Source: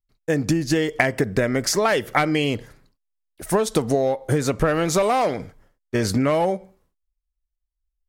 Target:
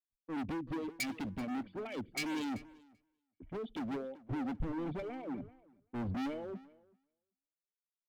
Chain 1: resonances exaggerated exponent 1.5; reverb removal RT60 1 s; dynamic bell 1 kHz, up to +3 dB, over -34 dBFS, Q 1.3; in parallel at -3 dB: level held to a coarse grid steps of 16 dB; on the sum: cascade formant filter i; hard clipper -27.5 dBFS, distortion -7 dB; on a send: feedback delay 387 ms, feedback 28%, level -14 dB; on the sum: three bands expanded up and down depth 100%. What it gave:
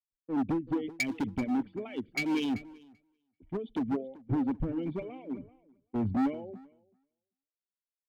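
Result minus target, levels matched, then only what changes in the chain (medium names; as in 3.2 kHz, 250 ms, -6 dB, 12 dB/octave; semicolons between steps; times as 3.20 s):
hard clipper: distortion -5 dB
change: hard clipper -36.5 dBFS, distortion -3 dB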